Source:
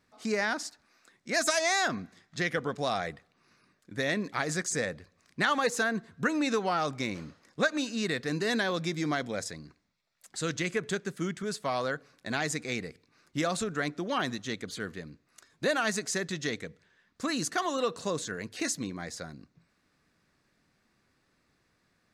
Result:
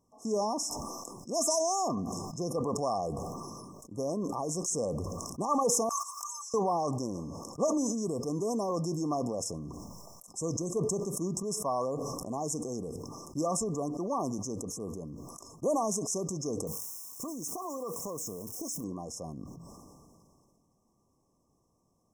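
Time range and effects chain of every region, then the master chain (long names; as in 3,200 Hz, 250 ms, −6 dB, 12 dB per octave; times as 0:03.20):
0:05.89–0:06.54: noise gate −43 dBFS, range −29 dB + Butterworth high-pass 1,200 Hz 48 dB per octave + upward compression, threshold −34 dBFS
0:16.67–0:18.84: spike at every zero crossing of −34.5 dBFS + downward compressor 10 to 1, threshold −33 dBFS
whole clip: brick-wall band-stop 1,200–5,200 Hz; dynamic equaliser 130 Hz, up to −4 dB, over −44 dBFS, Q 0.7; level that may fall only so fast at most 23 dB per second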